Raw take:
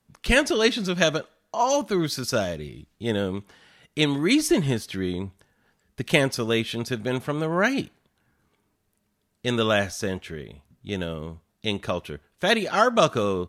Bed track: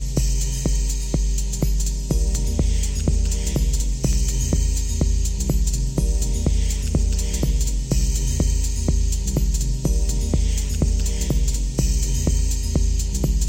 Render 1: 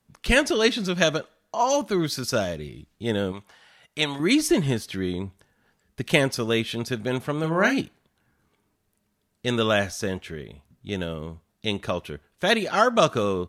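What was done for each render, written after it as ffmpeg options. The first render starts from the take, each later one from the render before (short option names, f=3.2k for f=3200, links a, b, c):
-filter_complex "[0:a]asettb=1/sr,asplit=3[a][b][c];[a]atrim=end=3.324[d];[b]atrim=start=3.32:end=4.2,asetpts=PTS-STARTPTS,afade=t=in:d=0.004:c=qsin,afade=t=out:st=0.876:d=0.004:c=qsin,lowshelf=f=490:t=q:w=1.5:g=-7[e];[c]atrim=start=4.196[f];[d][e]acrossfade=d=0.004:c1=hsin:c2=qsin[g];[g][f]acrossfade=d=0.004:c1=qsin:c2=hsin,asettb=1/sr,asplit=3[h][i][j];[h]atrim=end=7.404[k];[i]atrim=start=7.4:end=7.81,asetpts=PTS-STARTPTS,afade=t=in:d=0.004:c=qsin,afade=t=out:st=0.406:d=0.004:c=qsin,asplit=2[l][m];[m]adelay=37,volume=-6dB[n];[l][n]amix=inputs=2:normalize=0,atrim=end_sample=18081[o];[j]atrim=start=7.806[p];[k][o]acrossfade=d=0.004:c1=hsin:c2=qsin[q];[q][p]acrossfade=d=0.004:c1=qsin:c2=hsin"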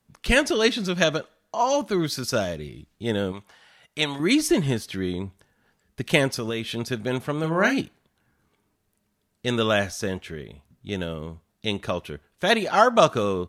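-filter_complex "[0:a]asettb=1/sr,asplit=3[a][b][c];[a]atrim=end=1.044[d];[b]atrim=start=1.04:end=1.93,asetpts=PTS-STARTPTS,afade=t=in:d=0.004:c=qsin,afade=t=out:st=0.886:d=0.004:c=qsin,acrossover=split=6200[e][f];[f]acompressor=threshold=-46dB:ratio=4:attack=1:release=60[g];[e][g]amix=inputs=2:normalize=0[h];[c]atrim=start=1.926[i];[d][h]acrossfade=d=0.004:c1=hsin:c2=qsin[j];[j][i]acrossfade=d=0.004:c1=qsin:c2=hsin,asettb=1/sr,asplit=3[k][l][m];[k]atrim=end=6.314[n];[l]atrim=start=6.31:end=6.72,asetpts=PTS-STARTPTS,afade=t=in:d=0.004:c=qsin,afade=t=out:st=0.406:d=0.004:c=qsin,acompressor=threshold=-23dB:ratio=6:attack=3.2:release=140:knee=1:detection=peak[o];[m]atrim=start=6.716[p];[n][o]acrossfade=d=0.004:c1=hsin:c2=qsin[q];[q][p]acrossfade=d=0.004:c1=qsin:c2=hsin,asettb=1/sr,asplit=3[r][s][t];[r]atrim=end=12.504[u];[s]atrim=start=12.5:end=13.12,asetpts=PTS-STARTPTS,afade=t=in:d=0.004:c=qsin,afade=t=out:st=0.616:d=0.004:c=qsin,equalizer=f=840:t=o:w=0.77:g=5.5[v];[t]atrim=start=13.116[w];[u][v]acrossfade=d=0.004:c1=hsin:c2=qsin[x];[x][w]acrossfade=d=0.004:c1=qsin:c2=hsin"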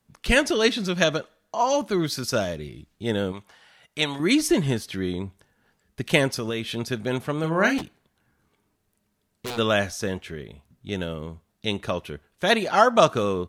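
-filter_complex "[0:a]asplit=3[a][b][c];[a]afade=t=out:st=7.77:d=0.02[d];[b]aeval=exprs='0.0501*(abs(mod(val(0)/0.0501+3,4)-2)-1)':c=same,afade=t=in:st=7.77:d=0.02,afade=t=out:st=9.57:d=0.02[e];[c]afade=t=in:st=9.57:d=0.02[f];[d][e][f]amix=inputs=3:normalize=0"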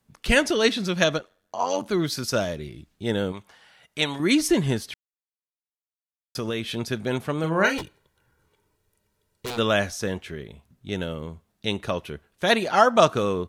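-filter_complex "[0:a]asettb=1/sr,asplit=3[a][b][c];[a]atrim=end=1.184[d];[b]atrim=start=1.18:end=1.86,asetpts=PTS-STARTPTS,afade=t=in:d=0.004:c=qsin,afade=t=out:st=0.676:d=0.004:c=qsin,tremolo=f=92:d=0.824[e];[c]atrim=start=1.856[f];[d][e]acrossfade=d=0.004:c1=hsin:c2=qsin[g];[g][f]acrossfade=d=0.004:c1=qsin:c2=hsin,asettb=1/sr,asplit=3[h][i][j];[h]atrim=end=7.644[k];[i]atrim=start=7.64:end=9.46,asetpts=PTS-STARTPTS,afade=t=in:d=0.004:c=qsin,afade=t=out:st=1.816:d=0.004:c=qsin,aecho=1:1:2.1:0.61,atrim=end_sample=80262[l];[j]atrim=start=9.456[m];[k][l]acrossfade=d=0.004:c1=hsin:c2=qsin[n];[n][m]acrossfade=d=0.004:c1=qsin:c2=hsin,asplit=3[o][p][q];[o]atrim=end=4.94,asetpts=PTS-STARTPTS,afade=t=out:st=4.936:d=0.004:c=hsin[r];[p]atrim=start=4.94:end=6.35,asetpts=PTS-STARTPTS,volume=0[s];[q]atrim=start=6.35,asetpts=PTS-STARTPTS,afade=t=in:d=0.004:c=hsin[t];[r][s][t]concat=n=3:v=0:a=1"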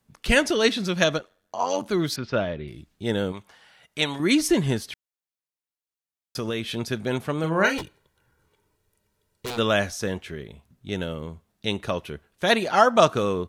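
-filter_complex "[0:a]asettb=1/sr,asplit=3[a][b][c];[a]atrim=end=2.164[d];[b]atrim=start=2.16:end=2.68,asetpts=PTS-STARTPTS,afade=t=in:d=0.004:c=qsin,afade=t=out:st=0.516:d=0.004:c=qsin,lowpass=f=3.3k:w=0.5412,lowpass=f=3.3k:w=1.3066[e];[c]atrim=start=2.676[f];[d][e]acrossfade=d=0.004:c1=hsin:c2=qsin[g];[g][f]acrossfade=d=0.004:c1=qsin:c2=hsin"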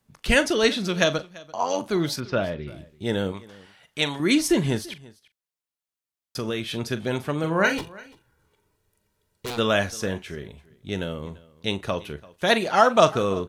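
-filter_complex "[0:a]asplit=2[a][b];[b]adelay=41,volume=-14dB[c];[a][c]amix=inputs=2:normalize=0,aecho=1:1:340:0.0794"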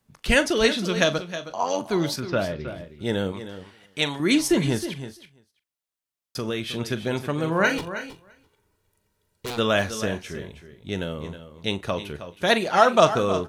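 -af "aecho=1:1:317:0.251"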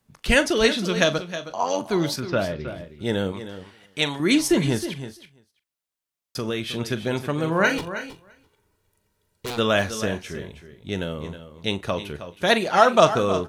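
-af "volume=1dB"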